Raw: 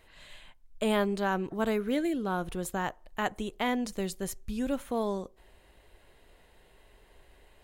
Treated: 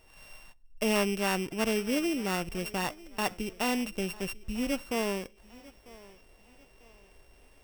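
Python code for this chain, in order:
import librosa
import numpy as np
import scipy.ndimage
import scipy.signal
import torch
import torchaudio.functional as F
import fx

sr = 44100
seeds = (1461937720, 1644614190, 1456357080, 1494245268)

p1 = np.r_[np.sort(x[:len(x) // 16 * 16].reshape(-1, 16), axis=1).ravel(), x[len(x) // 16 * 16:]]
y = p1 + fx.echo_thinned(p1, sr, ms=946, feedback_pct=40, hz=210.0, wet_db=-20, dry=0)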